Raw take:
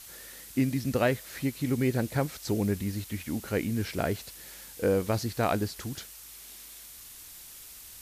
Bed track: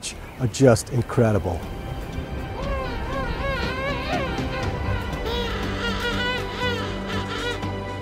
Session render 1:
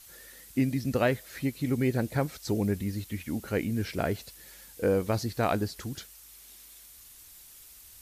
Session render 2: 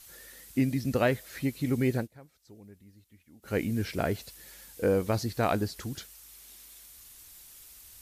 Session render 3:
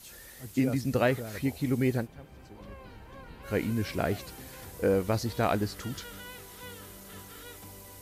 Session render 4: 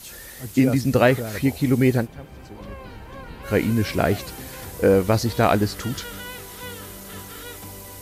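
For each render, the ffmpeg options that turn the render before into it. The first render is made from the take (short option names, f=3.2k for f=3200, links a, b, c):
-af "afftdn=nr=6:nf=-48"
-filter_complex "[0:a]asplit=3[a][b][c];[a]atrim=end=2.08,asetpts=PTS-STARTPTS,afade=t=out:st=1.92:d=0.16:c=qsin:silence=0.0668344[d];[b]atrim=start=2.08:end=3.42,asetpts=PTS-STARTPTS,volume=-23.5dB[e];[c]atrim=start=3.42,asetpts=PTS-STARTPTS,afade=t=in:d=0.16:c=qsin:silence=0.0668344[f];[d][e][f]concat=n=3:v=0:a=1"
-filter_complex "[1:a]volume=-21dB[a];[0:a][a]amix=inputs=2:normalize=0"
-af "volume=9dB"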